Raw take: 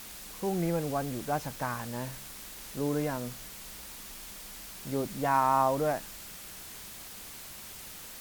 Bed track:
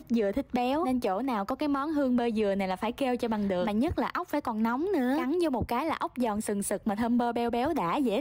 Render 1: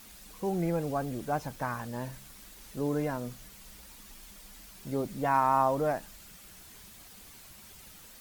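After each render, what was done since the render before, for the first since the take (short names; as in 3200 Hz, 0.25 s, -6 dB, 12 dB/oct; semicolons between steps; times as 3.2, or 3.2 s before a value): denoiser 8 dB, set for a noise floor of -46 dBFS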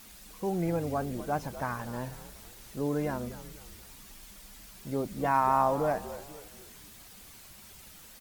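frequency-shifting echo 0.243 s, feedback 42%, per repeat -78 Hz, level -13.5 dB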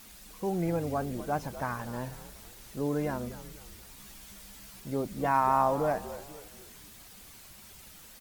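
3.96–4.8 doubler 15 ms -4 dB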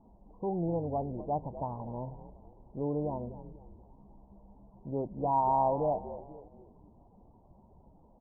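Chebyshev low-pass 960 Hz, order 6; dynamic EQ 240 Hz, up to -4 dB, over -42 dBFS, Q 1.6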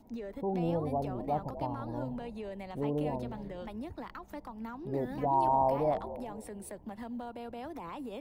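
add bed track -14 dB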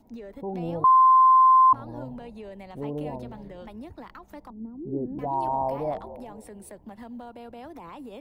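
0.84–1.73 bleep 1040 Hz -12.5 dBFS; 4.5–5.19 synth low-pass 330 Hz, resonance Q 2.3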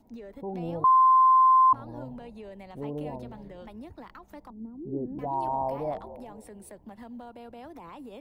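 gain -2.5 dB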